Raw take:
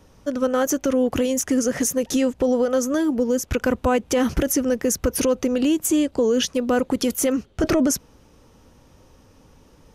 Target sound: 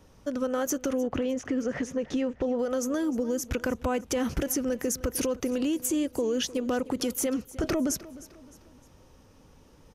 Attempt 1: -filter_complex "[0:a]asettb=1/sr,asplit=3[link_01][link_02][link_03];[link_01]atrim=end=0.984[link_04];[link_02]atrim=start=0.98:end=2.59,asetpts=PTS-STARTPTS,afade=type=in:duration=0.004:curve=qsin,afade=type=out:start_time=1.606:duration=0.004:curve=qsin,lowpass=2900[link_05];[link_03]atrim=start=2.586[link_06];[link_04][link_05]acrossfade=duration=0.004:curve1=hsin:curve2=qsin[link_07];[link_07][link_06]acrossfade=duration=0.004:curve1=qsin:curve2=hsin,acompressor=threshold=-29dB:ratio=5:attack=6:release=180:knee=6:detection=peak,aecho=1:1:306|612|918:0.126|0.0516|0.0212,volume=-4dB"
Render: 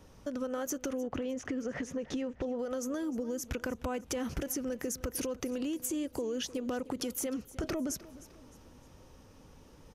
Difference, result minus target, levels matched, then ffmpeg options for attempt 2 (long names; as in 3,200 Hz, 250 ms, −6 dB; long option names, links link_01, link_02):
downward compressor: peak gain reduction +7.5 dB
-filter_complex "[0:a]asettb=1/sr,asplit=3[link_01][link_02][link_03];[link_01]atrim=end=0.984[link_04];[link_02]atrim=start=0.98:end=2.59,asetpts=PTS-STARTPTS,afade=type=in:duration=0.004:curve=qsin,afade=type=out:start_time=1.606:duration=0.004:curve=qsin,lowpass=2900[link_05];[link_03]atrim=start=2.586[link_06];[link_04][link_05]acrossfade=duration=0.004:curve1=hsin:curve2=qsin[link_07];[link_07][link_06]acrossfade=duration=0.004:curve1=qsin:curve2=hsin,acompressor=threshold=-19.5dB:ratio=5:attack=6:release=180:knee=6:detection=peak,aecho=1:1:306|612|918:0.126|0.0516|0.0212,volume=-4dB"